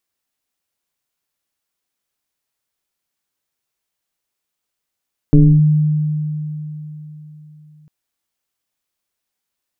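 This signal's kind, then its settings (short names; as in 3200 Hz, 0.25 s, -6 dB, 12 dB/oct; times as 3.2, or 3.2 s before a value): FM tone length 2.55 s, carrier 152 Hz, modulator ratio 0.92, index 1.2, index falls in 0.28 s linear, decay 3.79 s, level -4 dB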